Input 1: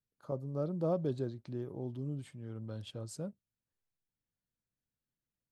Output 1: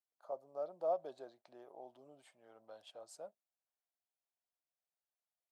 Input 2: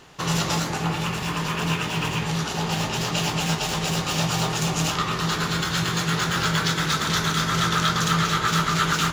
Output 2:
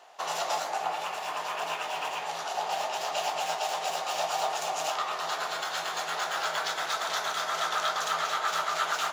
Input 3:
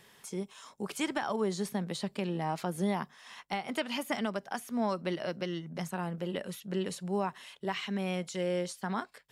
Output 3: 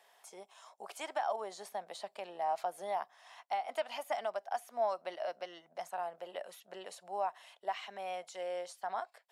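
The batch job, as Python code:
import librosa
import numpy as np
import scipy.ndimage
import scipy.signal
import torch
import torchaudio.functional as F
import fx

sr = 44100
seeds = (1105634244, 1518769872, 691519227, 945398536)

y = fx.highpass_res(x, sr, hz=690.0, q=4.9)
y = y * 10.0 ** (-8.5 / 20.0)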